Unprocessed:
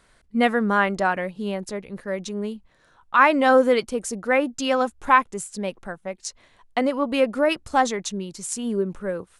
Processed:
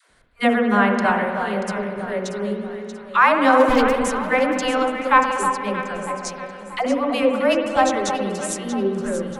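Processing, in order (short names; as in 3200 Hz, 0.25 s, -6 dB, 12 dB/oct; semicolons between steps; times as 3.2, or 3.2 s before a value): 3.59–4.05 minimum comb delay 8.6 ms; vibrato 5.9 Hz 30 cents; dispersion lows, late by 0.106 s, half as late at 420 Hz; on a send: echo with dull and thin repeats by turns 0.317 s, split 1300 Hz, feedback 62%, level -6 dB; on the sum: spring tank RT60 2.3 s, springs 59 ms, chirp 55 ms, DRR 5 dB; gain +1 dB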